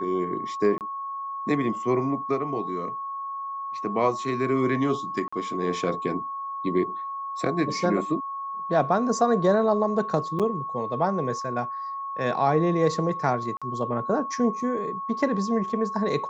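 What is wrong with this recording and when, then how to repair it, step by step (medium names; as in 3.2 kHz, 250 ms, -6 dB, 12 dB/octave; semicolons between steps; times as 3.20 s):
whine 1.1 kHz -30 dBFS
0.78–0.81 s: dropout 28 ms
5.28–5.33 s: dropout 45 ms
10.39–10.40 s: dropout 7.2 ms
13.57–13.62 s: dropout 46 ms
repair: band-stop 1.1 kHz, Q 30; interpolate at 0.78 s, 28 ms; interpolate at 5.28 s, 45 ms; interpolate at 10.39 s, 7.2 ms; interpolate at 13.57 s, 46 ms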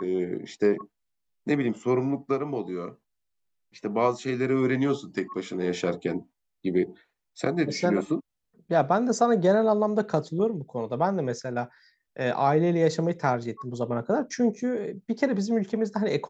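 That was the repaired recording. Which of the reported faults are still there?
nothing left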